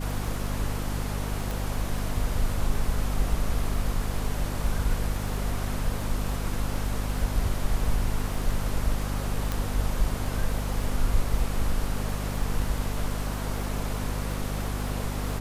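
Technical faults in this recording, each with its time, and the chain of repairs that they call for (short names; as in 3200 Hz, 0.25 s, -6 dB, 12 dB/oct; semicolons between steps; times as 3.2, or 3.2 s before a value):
crackle 21/s -32 dBFS
hum 50 Hz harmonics 5 -31 dBFS
1.51 pop
9.52 pop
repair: de-click; de-hum 50 Hz, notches 5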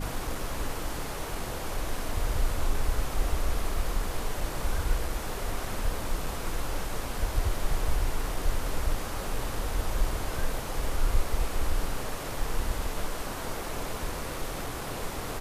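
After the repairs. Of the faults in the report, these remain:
none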